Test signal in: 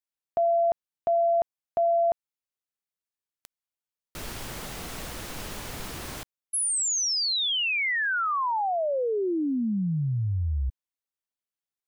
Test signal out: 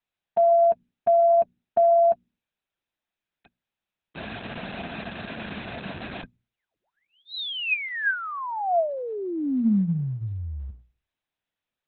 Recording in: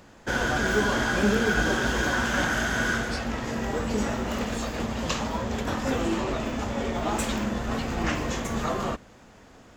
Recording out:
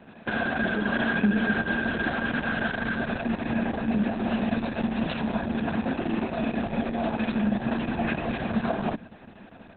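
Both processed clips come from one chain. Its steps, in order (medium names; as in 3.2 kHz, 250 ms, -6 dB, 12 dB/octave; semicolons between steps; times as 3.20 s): hum notches 60/120/180/240 Hz; compression 3:1, threshold -30 dBFS; high-pass 59 Hz 24 dB/octave; treble shelf 6.9 kHz +6 dB; small resonant body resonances 210/680/1600/2500 Hz, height 14 dB, ringing for 35 ms; trim -2.5 dB; Opus 6 kbps 48 kHz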